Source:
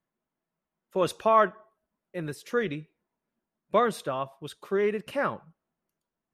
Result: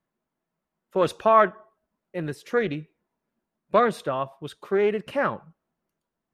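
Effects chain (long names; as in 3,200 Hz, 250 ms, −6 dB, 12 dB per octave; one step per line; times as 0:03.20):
high-shelf EQ 3,900 Hz −7 dB
highs frequency-modulated by the lows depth 0.11 ms
level +4 dB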